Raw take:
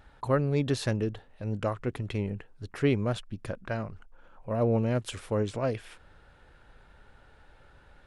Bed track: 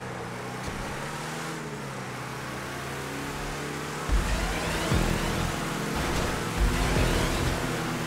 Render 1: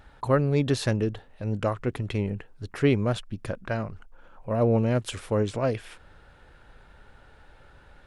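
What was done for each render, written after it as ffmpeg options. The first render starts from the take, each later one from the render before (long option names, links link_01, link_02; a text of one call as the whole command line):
ffmpeg -i in.wav -af "volume=3.5dB" out.wav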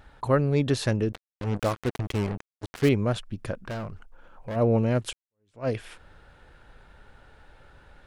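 ffmpeg -i in.wav -filter_complex "[0:a]asettb=1/sr,asplit=3[link_01][link_02][link_03];[link_01]atrim=end=1.124[link_04];[link_02]atrim=start=1.12:end=2.89,asetpts=PTS-STARTPTS,afade=type=in:duration=0.004:curve=qsin,afade=type=out:start_time=1.766:duration=0.004:curve=qsin,acrusher=bits=4:mix=0:aa=0.5[link_05];[link_03]atrim=start=2.886[link_06];[link_04][link_05]acrossfade=duration=0.004:curve1=hsin:curve2=qsin[link_07];[link_07][link_06]acrossfade=duration=0.004:curve1=qsin:curve2=hsin,asplit=3[link_08][link_09][link_10];[link_08]afade=type=out:start_time=3.56:duration=0.02[link_11];[link_09]asoftclip=type=hard:threshold=-29.5dB,afade=type=in:start_time=3.56:duration=0.02,afade=type=out:start_time=4.55:duration=0.02[link_12];[link_10]afade=type=in:start_time=4.55:duration=0.02[link_13];[link_11][link_12][link_13]amix=inputs=3:normalize=0,asplit=2[link_14][link_15];[link_14]atrim=end=5.13,asetpts=PTS-STARTPTS,afade=type=out:start_time=5.126:duration=0.004:curve=hsin[link_16];[link_15]atrim=start=5.13,asetpts=PTS-STARTPTS,afade=type=in:duration=0.55:curve=exp[link_17];[link_16][link_17]concat=n=2:v=0:a=1" out.wav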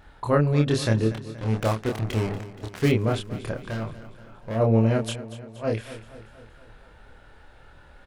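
ffmpeg -i in.wav -filter_complex "[0:a]asplit=2[link_01][link_02];[link_02]adelay=27,volume=-2.5dB[link_03];[link_01][link_03]amix=inputs=2:normalize=0,aecho=1:1:237|474|711|948|1185|1422:0.178|0.101|0.0578|0.0329|0.0188|0.0107" out.wav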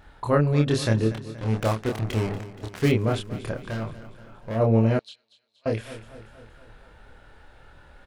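ffmpeg -i in.wav -filter_complex "[0:a]asettb=1/sr,asplit=3[link_01][link_02][link_03];[link_01]atrim=end=4.994[link_04];[link_02]atrim=start=4.99:end=5.66,asetpts=PTS-STARTPTS,afade=type=in:duration=0.004:curve=qsin,afade=type=out:start_time=0.666:duration=0.004:curve=qsin,bandpass=frequency=4100:width_type=q:width=7.2[link_05];[link_03]atrim=start=5.656[link_06];[link_04][link_05]acrossfade=duration=0.004:curve1=hsin:curve2=qsin[link_07];[link_07][link_06]acrossfade=duration=0.004:curve1=qsin:curve2=hsin" out.wav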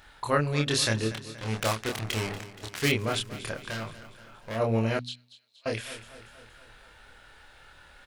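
ffmpeg -i in.wav -af "tiltshelf=frequency=1200:gain=-7.5,bandreject=frequency=61.23:width_type=h:width=4,bandreject=frequency=122.46:width_type=h:width=4,bandreject=frequency=183.69:width_type=h:width=4,bandreject=frequency=244.92:width_type=h:width=4,bandreject=frequency=306.15:width_type=h:width=4" out.wav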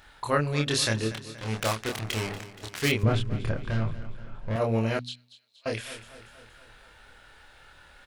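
ffmpeg -i in.wav -filter_complex "[0:a]asettb=1/sr,asplit=3[link_01][link_02][link_03];[link_01]atrim=end=3.034[link_04];[link_02]atrim=start=3.03:end=4.56,asetpts=PTS-STARTPTS,afade=type=in:duration=0.004:curve=qsin,afade=type=out:start_time=1.526:duration=0.004:curve=qsin,aemphasis=mode=reproduction:type=riaa[link_05];[link_03]atrim=start=4.556[link_06];[link_04][link_05]acrossfade=duration=0.004:curve1=hsin:curve2=qsin[link_07];[link_07][link_06]acrossfade=duration=0.004:curve1=qsin:curve2=hsin" out.wav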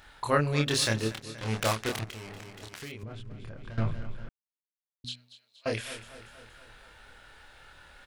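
ffmpeg -i in.wav -filter_complex "[0:a]asplit=3[link_01][link_02][link_03];[link_01]afade=type=out:start_time=0.67:duration=0.02[link_04];[link_02]aeval=exprs='sgn(val(0))*max(abs(val(0))-0.00841,0)':channel_layout=same,afade=type=in:start_time=0.67:duration=0.02,afade=type=out:start_time=1.22:duration=0.02[link_05];[link_03]afade=type=in:start_time=1.22:duration=0.02[link_06];[link_04][link_05][link_06]amix=inputs=3:normalize=0,asettb=1/sr,asplit=3[link_07][link_08][link_09];[link_07]atrim=end=2.044[link_10];[link_08]atrim=start=2.04:end=3.78,asetpts=PTS-STARTPTS,afade=type=in:duration=0.004:curve=qsin,afade=type=out:start_time=1.736:duration=0.004:curve=qsin,acompressor=threshold=-39dB:ratio=6:attack=3.2:release=140:knee=1:detection=peak[link_11];[link_09]atrim=start=3.776[link_12];[link_10][link_11]acrossfade=duration=0.004:curve1=hsin:curve2=qsin[link_13];[link_13][link_12]acrossfade=duration=0.004:curve1=qsin:curve2=hsin,asplit=3[link_14][link_15][link_16];[link_14]atrim=end=4.29,asetpts=PTS-STARTPTS,afade=type=out:start_time=4.286:duration=0.004:curve=hsin[link_17];[link_15]atrim=start=4.29:end=5.04,asetpts=PTS-STARTPTS,volume=0[link_18];[link_16]atrim=start=5.04,asetpts=PTS-STARTPTS,afade=type=in:duration=0.004:curve=hsin[link_19];[link_17][link_18][link_19]concat=n=3:v=0:a=1" out.wav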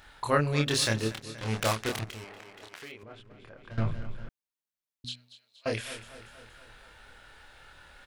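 ffmpeg -i in.wav -filter_complex "[0:a]asettb=1/sr,asplit=3[link_01][link_02][link_03];[link_01]atrim=end=2.244[link_04];[link_02]atrim=start=2.24:end=3.71,asetpts=PTS-STARTPTS,afade=type=in:duration=0.004:curve=qsin,afade=type=out:start_time=1.466:duration=0.004:curve=qsin,bass=frequency=250:gain=-14,treble=frequency=4000:gain=-7[link_05];[link_03]atrim=start=3.706[link_06];[link_04][link_05]acrossfade=duration=0.004:curve1=hsin:curve2=qsin[link_07];[link_07][link_06]acrossfade=duration=0.004:curve1=qsin:curve2=hsin" out.wav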